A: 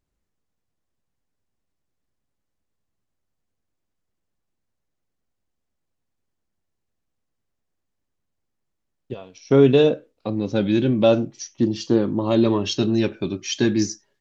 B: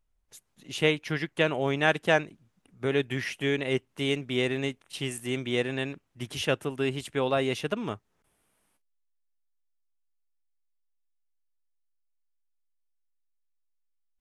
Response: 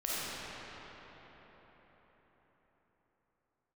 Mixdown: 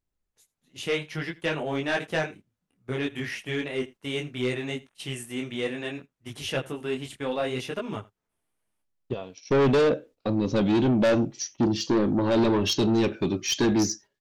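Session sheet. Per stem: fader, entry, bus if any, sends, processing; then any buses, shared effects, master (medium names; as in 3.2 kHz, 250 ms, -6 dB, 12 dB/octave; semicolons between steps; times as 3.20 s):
+2.5 dB, 0.00 s, no send, no echo send, none
+2.5 dB, 0.05 s, no send, echo send -22 dB, detune thickener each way 22 cents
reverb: none
echo: delay 81 ms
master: gate -43 dBFS, range -10 dB; saturation -17.5 dBFS, distortion -6 dB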